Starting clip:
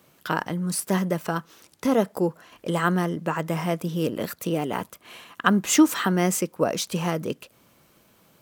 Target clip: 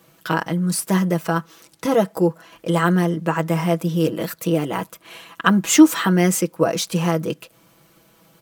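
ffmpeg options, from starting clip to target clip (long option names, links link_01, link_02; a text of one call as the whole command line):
ffmpeg -i in.wav -af "aecho=1:1:6.1:0.65,volume=2.5dB" -ar 48000 -c:a libvorbis -b:a 192k out.ogg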